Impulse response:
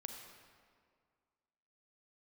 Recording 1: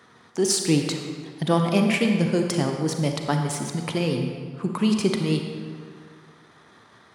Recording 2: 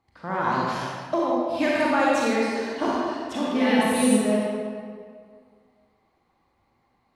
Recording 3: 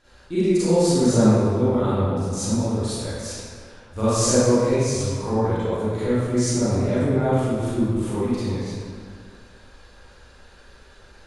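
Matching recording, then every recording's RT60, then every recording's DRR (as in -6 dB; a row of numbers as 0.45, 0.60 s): 1; 2.0, 2.0, 2.0 s; 3.5, -5.5, -14.0 dB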